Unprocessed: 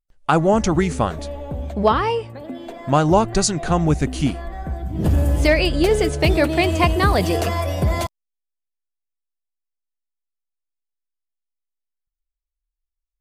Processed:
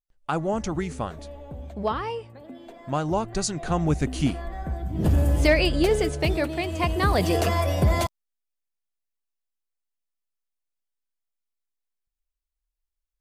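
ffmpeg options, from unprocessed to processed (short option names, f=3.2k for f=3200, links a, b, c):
-af "volume=7dB,afade=t=in:st=3.23:d=1.1:silence=0.446684,afade=t=out:st=5.68:d=0.99:silence=0.398107,afade=t=in:st=6.67:d=0.86:silence=0.316228"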